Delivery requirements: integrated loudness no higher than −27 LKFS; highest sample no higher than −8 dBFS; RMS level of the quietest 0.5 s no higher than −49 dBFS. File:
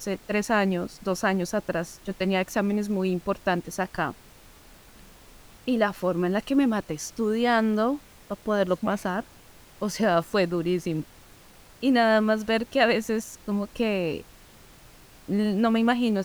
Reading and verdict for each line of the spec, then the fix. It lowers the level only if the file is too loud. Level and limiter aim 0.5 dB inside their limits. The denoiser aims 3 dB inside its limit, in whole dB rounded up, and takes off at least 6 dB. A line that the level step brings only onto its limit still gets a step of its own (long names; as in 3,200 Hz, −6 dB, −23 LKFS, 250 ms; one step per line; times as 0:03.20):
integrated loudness −26.0 LKFS: out of spec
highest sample −6.5 dBFS: out of spec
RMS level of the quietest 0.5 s −51 dBFS: in spec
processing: level −1.5 dB
brickwall limiter −8.5 dBFS